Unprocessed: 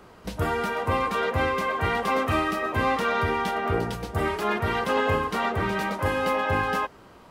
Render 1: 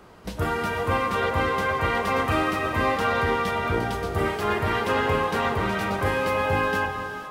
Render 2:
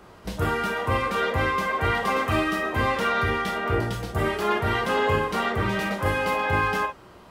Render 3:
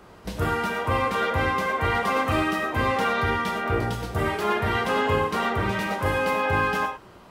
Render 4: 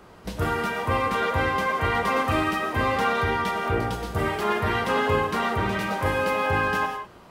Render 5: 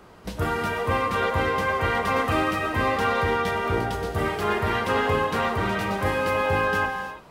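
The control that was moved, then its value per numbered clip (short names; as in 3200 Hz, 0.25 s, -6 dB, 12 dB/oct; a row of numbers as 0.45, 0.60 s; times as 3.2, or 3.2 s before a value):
non-linear reverb, gate: 530, 80, 130, 220, 360 ms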